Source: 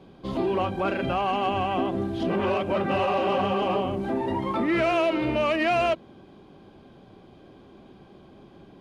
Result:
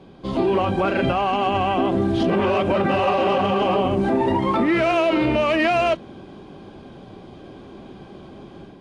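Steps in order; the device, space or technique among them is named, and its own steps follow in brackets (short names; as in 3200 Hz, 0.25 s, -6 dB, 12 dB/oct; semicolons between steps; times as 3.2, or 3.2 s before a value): low-bitrate web radio (AGC gain up to 5.5 dB; limiter -15.5 dBFS, peak gain reduction 7 dB; gain +4 dB; AAC 48 kbps 22050 Hz)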